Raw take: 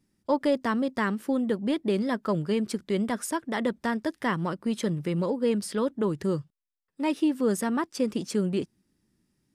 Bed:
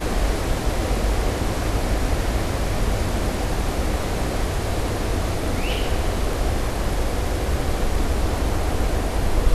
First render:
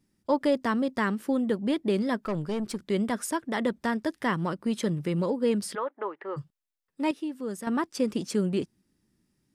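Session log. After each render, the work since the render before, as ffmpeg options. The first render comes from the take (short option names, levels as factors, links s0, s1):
-filter_complex "[0:a]asettb=1/sr,asplit=3[s0][s1][s2];[s0]atrim=end=2.244[s3];[s1]atrim=start=2.24:end=2.79,asetpts=PTS-STARTPTS,afade=t=in:d=0.004:c=qsin,afade=t=out:st=0.546:d=0.004:c=qsin,aeval=exprs='(tanh(17.8*val(0)+0.3)-tanh(0.3))/17.8':c=same[s4];[s2]atrim=start=2.786[s5];[s3][s4]acrossfade=d=0.004:c1=hsin:c2=qsin[s6];[s6][s5]acrossfade=d=0.004:c1=qsin:c2=hsin,asplit=3[s7][s8][s9];[s7]afade=t=out:st=5.74:d=0.02[s10];[s8]highpass=f=450:w=0.5412,highpass=f=450:w=1.3066,equalizer=f=480:t=q:w=4:g=-5,equalizer=f=810:t=q:w=4:g=5,equalizer=f=1200:t=q:w=4:g=4,equalizer=f=2000:t=q:w=4:g=4,lowpass=f=2400:w=0.5412,lowpass=f=2400:w=1.3066,afade=t=in:st=5.74:d=0.02,afade=t=out:st=6.36:d=0.02[s11];[s9]afade=t=in:st=6.36:d=0.02[s12];[s10][s11][s12]amix=inputs=3:normalize=0,asplit=3[s13][s14][s15];[s13]atrim=end=7.112[s16];[s14]atrim=start=7.108:end=7.672,asetpts=PTS-STARTPTS,volume=0.355[s17];[s15]atrim=start=7.668[s18];[s16][s17]acrossfade=d=0.004:c1=hsin:c2=hsin[s19];[s19][s18]acrossfade=d=0.004:c1=hsin:c2=hsin"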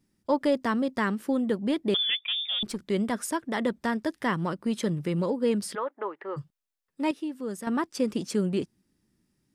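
-filter_complex "[0:a]asettb=1/sr,asplit=3[s0][s1][s2];[s0]atrim=end=1.944[s3];[s1]atrim=start=1.94:end=2.63,asetpts=PTS-STARTPTS,afade=t=in:d=0.004:c=qsin,afade=t=out:st=0.686:d=0.004:c=qsin,lowpass=f=3100:t=q:w=0.5098,lowpass=f=3100:t=q:w=0.6013,lowpass=f=3100:t=q:w=0.9,lowpass=f=3100:t=q:w=2.563,afreqshift=-3700[s4];[s2]atrim=start=2.626[s5];[s3][s4]acrossfade=d=0.004:c1=hsin:c2=qsin[s6];[s6][s5]acrossfade=d=0.004:c1=qsin:c2=hsin"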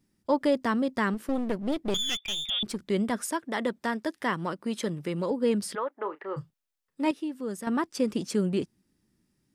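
-filter_complex "[0:a]asettb=1/sr,asplit=3[s0][s1][s2];[s0]atrim=end=1.144[s3];[s1]atrim=start=1.14:end=2.5,asetpts=PTS-STARTPTS,afade=t=in:d=0.004:c=qsin,afade=t=out:st=1.356:d=0.004:c=qsin,aeval=exprs='clip(val(0),-1,0.0168)':c=same[s4];[s2]atrim=start=2.496[s5];[s3][s4]acrossfade=d=0.004:c1=hsin:c2=qsin[s6];[s6][s5]acrossfade=d=0.004:c1=qsin:c2=hsin,asettb=1/sr,asplit=3[s7][s8][s9];[s7]atrim=end=3.274[s10];[s8]atrim=start=3.27:end=5.31,asetpts=PTS-STARTPTS,afade=t=in:d=0.004:c=qsin,afade=t=out:st=2.036:d=0.004:c=qsin,highpass=f=260:p=1[s11];[s9]atrim=start=5.306[s12];[s10][s11]acrossfade=d=0.004:c1=hsin:c2=qsin[s13];[s13][s12]acrossfade=d=0.004:c1=qsin:c2=hsin,asettb=1/sr,asplit=3[s14][s15][s16];[s14]atrim=end=6.014[s17];[s15]atrim=start=6.01:end=7.1,asetpts=PTS-STARTPTS,afade=t=in:d=0.004:c=qsin,afade=t=out:st=1.086:d=0.004:c=qsin,asplit=2[s18][s19];[s19]adelay=32,volume=0.266[s20];[s18][s20]amix=inputs=2:normalize=0,atrim=end_sample=48069[s21];[s16]atrim=start=7.096[s22];[s17][s21]acrossfade=d=0.004:c1=hsin:c2=qsin[s23];[s23][s22]acrossfade=d=0.004:c1=qsin:c2=hsin"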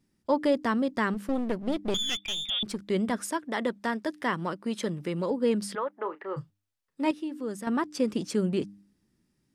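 -af "highshelf=f=11000:g=-6,bandreject=f=100.4:t=h:w=4,bandreject=f=200.8:t=h:w=4,bandreject=f=301.2:t=h:w=4"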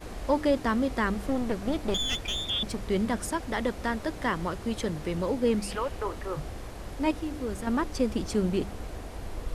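-filter_complex "[1:a]volume=0.15[s0];[0:a][s0]amix=inputs=2:normalize=0"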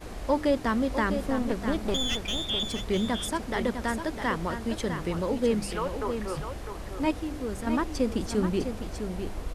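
-af "aecho=1:1:654:0.398"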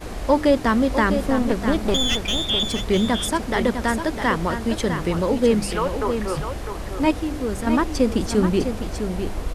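-af "volume=2.37"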